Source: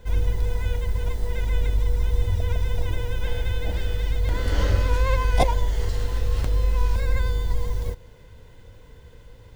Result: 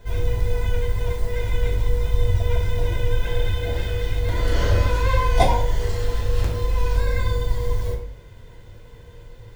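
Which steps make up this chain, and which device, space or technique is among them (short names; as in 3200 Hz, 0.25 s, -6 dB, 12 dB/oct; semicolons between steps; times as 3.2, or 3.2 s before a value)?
bathroom (reverb RT60 0.60 s, pre-delay 3 ms, DRR -2.5 dB); gain -1 dB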